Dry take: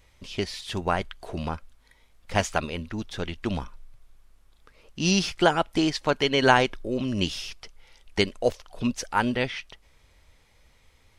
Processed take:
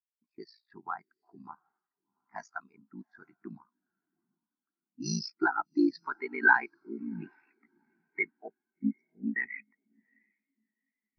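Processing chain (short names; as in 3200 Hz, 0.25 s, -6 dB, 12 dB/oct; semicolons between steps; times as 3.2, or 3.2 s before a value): 8.48–9.27 Chebyshev band-stop 580–3500 Hz, order 5; low-pass opened by the level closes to 1500 Hz, open at -21 dBFS; HPF 320 Hz 12 dB/oct; in parallel at +1.5 dB: compressor, threshold -37 dBFS, peak gain reduction 22.5 dB; on the sum: low-pass sweep 5000 Hz -> 2300 Hz, 5.55–6.95; ring modulator 28 Hz; fixed phaser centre 1300 Hz, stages 4; added harmonics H 5 -11 dB, 8 -26 dB, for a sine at -9 dBFS; on a send: diffused feedback echo 0.75 s, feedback 55%, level -13 dB; on the sum: spectral expander 2.5:1; gain -2 dB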